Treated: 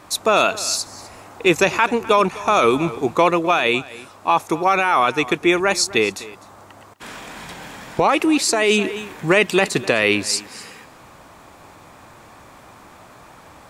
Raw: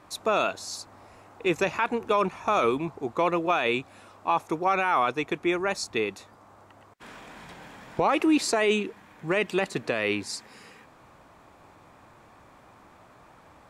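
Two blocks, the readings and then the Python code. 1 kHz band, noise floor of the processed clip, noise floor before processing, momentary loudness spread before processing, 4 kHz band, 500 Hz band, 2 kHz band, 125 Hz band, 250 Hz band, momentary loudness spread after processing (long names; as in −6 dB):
+7.5 dB, −45 dBFS, −55 dBFS, 15 LU, +11.5 dB, +8.0 dB, +9.5 dB, +8.5 dB, +7.0 dB, 19 LU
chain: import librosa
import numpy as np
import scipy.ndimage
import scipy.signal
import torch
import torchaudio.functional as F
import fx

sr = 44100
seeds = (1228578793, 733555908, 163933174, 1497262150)

p1 = fx.high_shelf(x, sr, hz=3700.0, db=8.0)
p2 = p1 + fx.echo_single(p1, sr, ms=254, db=-19.0, dry=0)
p3 = fx.rider(p2, sr, range_db=10, speed_s=0.5)
y = F.gain(torch.from_numpy(p3), 8.0).numpy()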